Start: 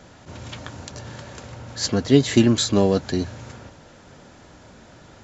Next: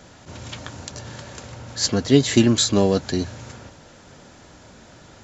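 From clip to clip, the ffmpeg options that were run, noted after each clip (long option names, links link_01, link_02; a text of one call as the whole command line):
ffmpeg -i in.wav -af "highshelf=frequency=4100:gain=5.5" out.wav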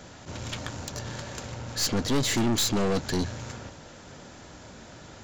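ffmpeg -i in.wav -af "aeval=exprs='(tanh(17.8*val(0)+0.5)-tanh(0.5))/17.8':channel_layout=same,volume=2.5dB" out.wav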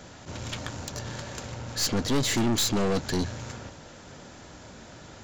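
ffmpeg -i in.wav -af anull out.wav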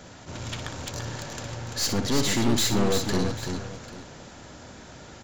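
ffmpeg -i in.wav -af "aecho=1:1:60|115|340|792:0.376|0.106|0.531|0.141" out.wav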